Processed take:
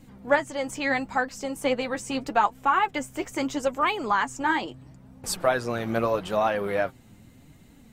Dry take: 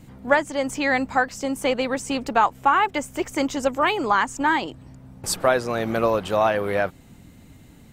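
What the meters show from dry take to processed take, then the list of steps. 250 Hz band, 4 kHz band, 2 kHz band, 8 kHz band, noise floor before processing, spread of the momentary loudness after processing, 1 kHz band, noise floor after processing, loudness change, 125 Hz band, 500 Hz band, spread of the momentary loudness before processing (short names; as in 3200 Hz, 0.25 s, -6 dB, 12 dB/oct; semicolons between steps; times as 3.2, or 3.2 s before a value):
-4.0 dB, -4.0 dB, -4.0 dB, -4.5 dB, -49 dBFS, 8 LU, -3.5 dB, -53 dBFS, -4.0 dB, -3.0 dB, -4.0 dB, 7 LU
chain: flange 0.77 Hz, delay 3.5 ms, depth 6.5 ms, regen +42%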